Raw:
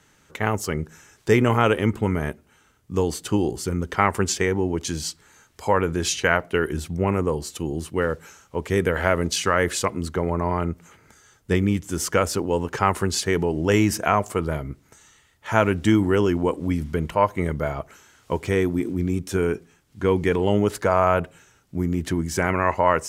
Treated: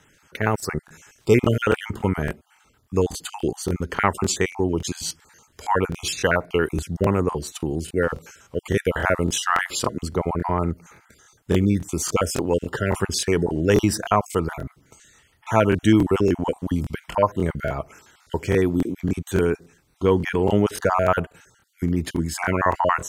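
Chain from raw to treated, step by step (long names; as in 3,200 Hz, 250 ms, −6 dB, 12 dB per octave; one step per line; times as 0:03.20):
time-frequency cells dropped at random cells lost 31%
dynamic equaliser 2,100 Hz, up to −3 dB, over −43 dBFS, Q 5.2
regular buffer underruns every 0.28 s, samples 1,024, repeat, from 0:00.58
level +2 dB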